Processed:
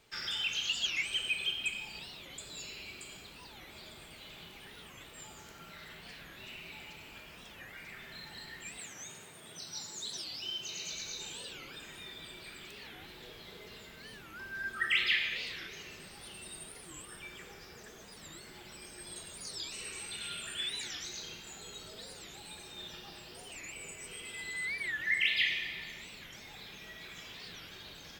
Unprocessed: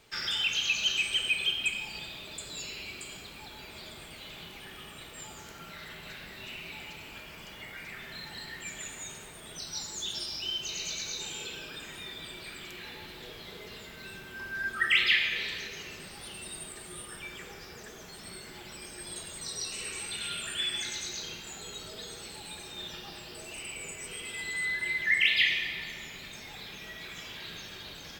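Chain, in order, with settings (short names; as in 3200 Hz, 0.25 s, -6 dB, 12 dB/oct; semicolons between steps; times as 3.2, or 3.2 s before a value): 8.79–10.93 HPF 91 Hz 24 dB/oct; record warp 45 rpm, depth 250 cents; gain -5 dB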